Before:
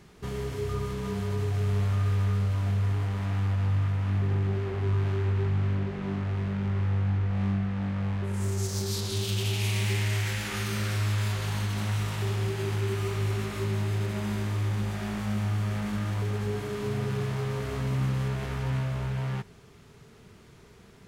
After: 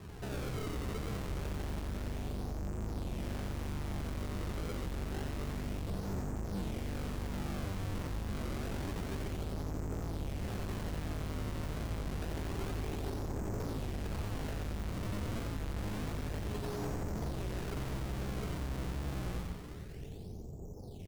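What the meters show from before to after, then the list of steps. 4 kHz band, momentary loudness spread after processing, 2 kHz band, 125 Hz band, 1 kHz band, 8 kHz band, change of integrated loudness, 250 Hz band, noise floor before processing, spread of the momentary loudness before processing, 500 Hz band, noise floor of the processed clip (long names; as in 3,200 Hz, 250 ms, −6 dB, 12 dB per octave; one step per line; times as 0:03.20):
−11.0 dB, 1 LU, −10.0 dB, −12.5 dB, −6.5 dB, −10.0 dB, −10.5 dB, −7.0 dB, −53 dBFS, 5 LU, −7.5 dB, −45 dBFS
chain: sub-octave generator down 1 octave, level +1 dB
Chebyshev low-pass filter 790 Hz, order 5
parametric band 250 Hz −6 dB 0.2 octaves
downward compressor, threshold −25 dBFS, peak gain reduction 7 dB
sample-and-hold swept by an LFO 30×, swing 160% 0.28 Hz
tube saturation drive 45 dB, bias 0.55
on a send: echo with shifted repeats 89 ms, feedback 47%, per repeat −120 Hz, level −4 dB
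on the sum: wow of a warped record 33 1/3 rpm, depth 160 cents
level +7 dB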